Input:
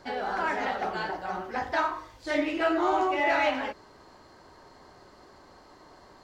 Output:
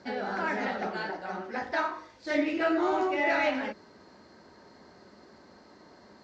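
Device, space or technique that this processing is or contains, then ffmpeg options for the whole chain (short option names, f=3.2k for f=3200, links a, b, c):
car door speaker: -filter_complex "[0:a]highpass=86,equalizer=f=120:t=q:w=4:g=-5,equalizer=f=210:t=q:w=4:g=9,equalizer=f=780:t=q:w=4:g=-4,equalizer=f=1.1k:t=q:w=4:g=-6,equalizer=f=3.1k:t=q:w=4:g=-5,lowpass=f=6.5k:w=0.5412,lowpass=f=6.5k:w=1.3066,asettb=1/sr,asplit=3[a][b][c];[a]atrim=end=0.874[d];[b]atrim=start=0.87:end=2.3,asetpts=PTS-STARTPTS,afade=t=in:d=0.004:c=qsin,afade=t=out:st=1.426:d=0.004:c=qsin,bass=f=250:g=-6,treble=f=4k:g=-1[e];[c]atrim=start=2.296[f];[d][e]acrossfade=d=0.004:c1=hsin:c2=qsin[g];[g][f]acrossfade=d=0.004:c1=qsin:c2=hsin"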